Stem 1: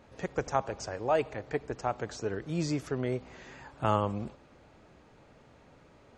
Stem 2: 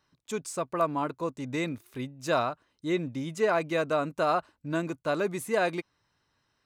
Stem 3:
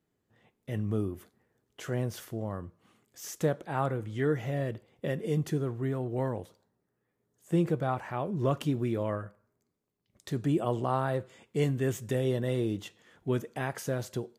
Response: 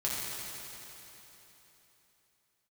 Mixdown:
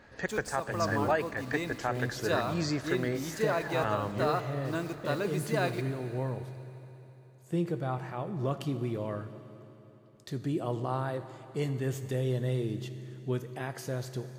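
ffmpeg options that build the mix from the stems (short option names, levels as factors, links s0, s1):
-filter_complex "[0:a]equalizer=f=1700:w=4:g=14,volume=0.944[s0];[1:a]acrusher=bits=7:mix=0:aa=0.000001,volume=0.531,asplit=2[s1][s2];[s2]volume=0.178[s3];[2:a]volume=0.531,asplit=2[s4][s5];[s5]volume=0.188[s6];[3:a]atrim=start_sample=2205[s7];[s3][s6]amix=inputs=2:normalize=0[s8];[s8][s7]afir=irnorm=-1:irlink=0[s9];[s0][s1][s4][s9]amix=inputs=4:normalize=0,equalizer=f=4500:w=3.8:g=6.5,alimiter=limit=0.15:level=0:latency=1:release=333"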